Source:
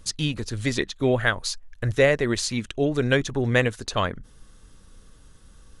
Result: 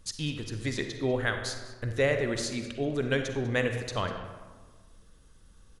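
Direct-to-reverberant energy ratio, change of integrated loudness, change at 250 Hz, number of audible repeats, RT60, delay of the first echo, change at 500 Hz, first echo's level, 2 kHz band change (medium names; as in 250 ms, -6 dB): 5.5 dB, -6.5 dB, -6.5 dB, 1, 1.4 s, 197 ms, -6.0 dB, -19.5 dB, -6.5 dB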